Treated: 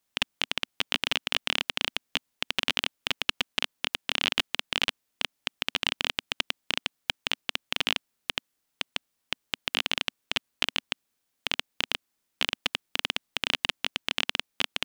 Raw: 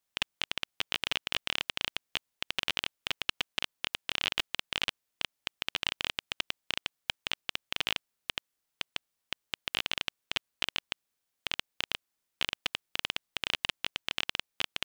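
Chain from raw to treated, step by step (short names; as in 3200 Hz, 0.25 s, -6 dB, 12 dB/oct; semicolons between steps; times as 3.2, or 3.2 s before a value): bell 250 Hz +5 dB 0.77 oct; gain +4.5 dB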